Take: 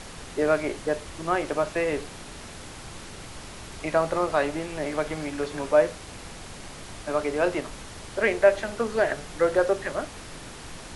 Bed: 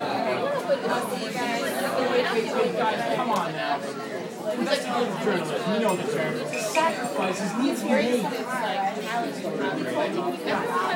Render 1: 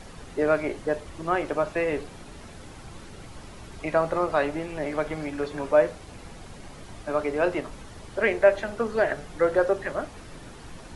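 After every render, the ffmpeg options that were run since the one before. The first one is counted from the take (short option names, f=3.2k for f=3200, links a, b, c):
-af "afftdn=nr=8:nf=-42"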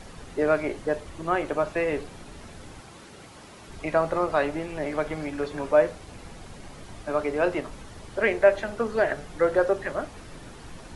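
-filter_complex "[0:a]asettb=1/sr,asplit=3[a][b][c];[a]atrim=end=1.144[d];[b]atrim=start=1.14:end=1.59,asetpts=PTS-STARTPTS,afade=t=in:d=0.004:c=qsin,afade=t=out:st=0.446:d=0.004:c=qsin,bandreject=f=5.2k:w=12[e];[c]atrim=start=1.586[f];[d][e]acrossfade=d=0.004:c1=hsin:c2=qsin[g];[g][f]acrossfade=d=0.004:c1=qsin:c2=hsin,asettb=1/sr,asplit=3[h][i][j];[h]atrim=end=2.804[k];[i]atrim=start=2.8:end=3.69,asetpts=PTS-STARTPTS,afade=t=in:d=0.004:c=qsin,afade=t=out:st=0.886:d=0.004:c=qsin,highpass=f=220:p=1[l];[j]atrim=start=3.686[m];[k][l]acrossfade=d=0.004:c1=hsin:c2=qsin[n];[n][m]acrossfade=d=0.004:c1=qsin:c2=hsin"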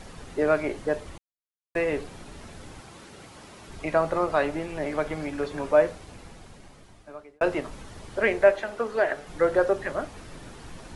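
-filter_complex "[0:a]asettb=1/sr,asplit=3[a][b][c];[a]atrim=end=8.514[d];[b]atrim=start=8.51:end=9.27,asetpts=PTS-STARTPTS,afade=t=in:d=0.004:c=qsin,afade=t=out:st=0.756:d=0.004:c=qsin,bass=f=250:g=-11,treble=f=4k:g=-3[e];[c]atrim=start=9.266[f];[d][e]acrossfade=d=0.004:c1=hsin:c2=qsin[g];[g][f]acrossfade=d=0.004:c1=qsin:c2=hsin,asplit=4[h][i][j][k];[h]atrim=end=1.18,asetpts=PTS-STARTPTS,afade=t=out:st=1.176:d=0.004:c=hsin[l];[i]atrim=start=1.18:end=1.75,asetpts=PTS-STARTPTS,volume=0[m];[j]atrim=start=1.75:end=7.41,asetpts=PTS-STARTPTS,afade=t=in:d=0.004:c=hsin,afade=t=out:st=4.1:d=1.56[n];[k]atrim=start=7.41,asetpts=PTS-STARTPTS,afade=t=in:d=0.004:c=hsin[o];[l][m][n][o]concat=n=4:v=0:a=1"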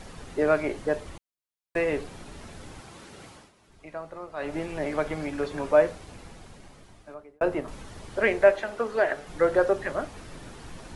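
-filter_complex "[0:a]asettb=1/sr,asplit=3[a][b][c];[a]atrim=end=7.144[d];[b]atrim=start=7.14:end=7.68,asetpts=PTS-STARTPTS,afade=t=in:d=0.004:c=qsin,afade=t=out:st=0.536:d=0.004:c=qsin,equalizer=f=4.5k:w=0.39:g=-8[e];[c]atrim=start=7.676[f];[d][e]acrossfade=d=0.004:c1=hsin:c2=qsin[g];[g][f]acrossfade=d=0.004:c1=qsin:c2=hsin,asplit=3[h][i][j];[h]atrim=end=3.52,asetpts=PTS-STARTPTS,afade=t=out:st=3.29:d=0.23:silence=0.188365[k];[i]atrim=start=3.52:end=4.36,asetpts=PTS-STARTPTS,volume=-14.5dB[l];[j]atrim=start=4.36,asetpts=PTS-STARTPTS,afade=t=in:d=0.23:silence=0.188365[m];[k][l][m]concat=n=3:v=0:a=1"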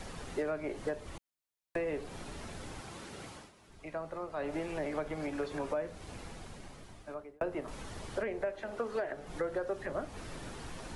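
-filter_complex "[0:a]alimiter=limit=-15dB:level=0:latency=1:release=396,acrossover=split=350|990[a][b][c];[a]acompressor=threshold=-42dB:ratio=4[d];[b]acompressor=threshold=-37dB:ratio=4[e];[c]acompressor=threshold=-46dB:ratio=4[f];[d][e][f]amix=inputs=3:normalize=0"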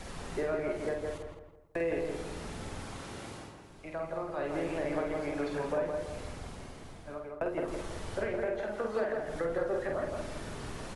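-filter_complex "[0:a]asplit=2[a][b];[b]adelay=48,volume=-4dB[c];[a][c]amix=inputs=2:normalize=0,asplit=2[d][e];[e]adelay=165,lowpass=f=1.8k:p=1,volume=-3dB,asplit=2[f][g];[g]adelay=165,lowpass=f=1.8k:p=1,volume=0.41,asplit=2[h][i];[i]adelay=165,lowpass=f=1.8k:p=1,volume=0.41,asplit=2[j][k];[k]adelay=165,lowpass=f=1.8k:p=1,volume=0.41,asplit=2[l][m];[m]adelay=165,lowpass=f=1.8k:p=1,volume=0.41[n];[d][f][h][j][l][n]amix=inputs=6:normalize=0"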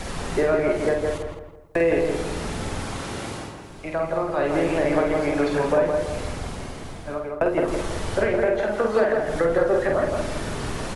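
-af "volume=12dB"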